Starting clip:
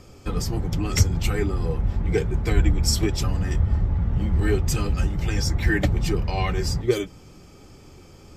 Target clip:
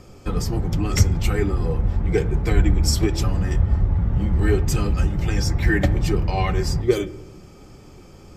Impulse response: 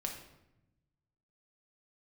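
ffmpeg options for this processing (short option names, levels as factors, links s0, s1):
-filter_complex "[0:a]asplit=2[s0][s1];[1:a]atrim=start_sample=2205,lowpass=2400[s2];[s1][s2]afir=irnorm=-1:irlink=0,volume=0.422[s3];[s0][s3]amix=inputs=2:normalize=0"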